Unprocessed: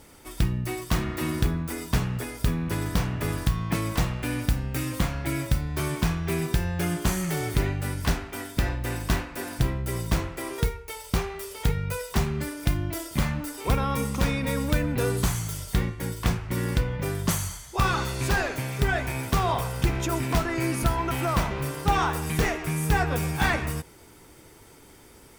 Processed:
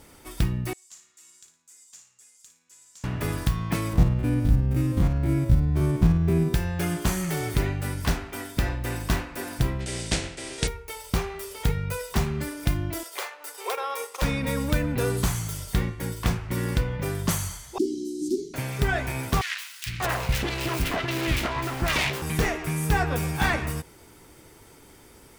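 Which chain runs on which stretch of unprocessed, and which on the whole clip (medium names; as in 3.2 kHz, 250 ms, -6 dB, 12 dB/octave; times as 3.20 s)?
0.73–3.04 s: band-pass filter 7.1 kHz, Q 7.7 + flutter echo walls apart 9.7 m, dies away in 0.38 s
3.93–6.54 s: spectrogram pixelated in time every 50 ms + tilt shelf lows +8.5 dB, about 650 Hz
9.79–10.67 s: spectral contrast reduction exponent 0.59 + Chebyshev low-pass 8.9 kHz, order 4 + peaking EQ 1.1 kHz -11.5 dB 0.73 oct
13.03–14.22 s: Chebyshev high-pass 410 Hz, order 5 + band-stop 620 Hz + transient shaper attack +1 dB, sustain -8 dB
17.78–18.54 s: inverse Chebyshev band-stop 710–1700 Hz, stop band 80 dB + frequency shift -430 Hz + distance through air 54 m
19.41–22.22 s: self-modulated delay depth 0.58 ms + three bands offset in time highs, lows, mids 450/590 ms, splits 200/1800 Hz + dynamic bell 2.4 kHz, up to +5 dB, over -44 dBFS, Q 0.94
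whole clip: none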